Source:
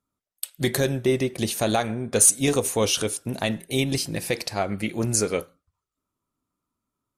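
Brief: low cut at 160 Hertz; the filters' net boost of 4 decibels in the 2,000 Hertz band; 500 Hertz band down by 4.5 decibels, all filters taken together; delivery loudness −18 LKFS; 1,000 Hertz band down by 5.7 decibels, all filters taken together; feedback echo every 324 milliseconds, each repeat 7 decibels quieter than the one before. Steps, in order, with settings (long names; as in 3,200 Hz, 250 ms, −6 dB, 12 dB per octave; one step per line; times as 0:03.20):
high-pass filter 160 Hz
parametric band 500 Hz −4 dB
parametric band 1,000 Hz −8.5 dB
parametric band 2,000 Hz +7 dB
repeating echo 324 ms, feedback 45%, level −7 dB
level +5.5 dB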